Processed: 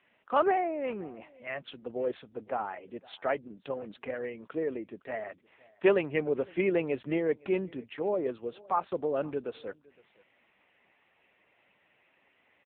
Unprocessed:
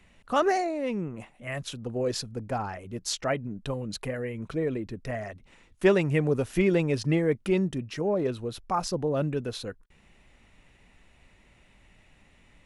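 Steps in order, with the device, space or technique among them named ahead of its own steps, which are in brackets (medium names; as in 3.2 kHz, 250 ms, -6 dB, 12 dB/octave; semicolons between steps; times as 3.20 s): satellite phone (band-pass 350–3300 Hz; delay 513 ms -24 dB; AMR-NB 6.7 kbps 8 kHz)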